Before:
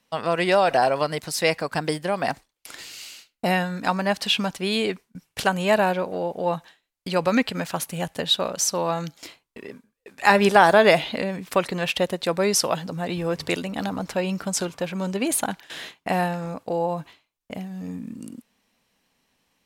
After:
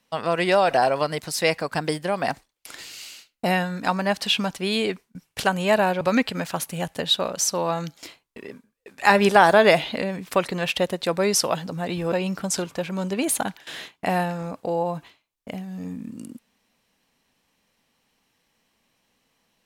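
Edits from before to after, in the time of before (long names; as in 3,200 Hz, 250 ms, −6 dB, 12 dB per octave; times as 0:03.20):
0:06.01–0:07.21: remove
0:13.32–0:14.15: remove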